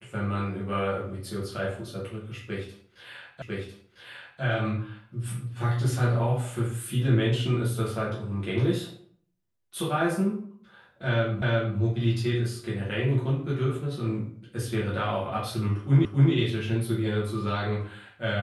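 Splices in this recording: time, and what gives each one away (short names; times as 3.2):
3.42 repeat of the last 1 s
11.42 repeat of the last 0.36 s
16.05 repeat of the last 0.27 s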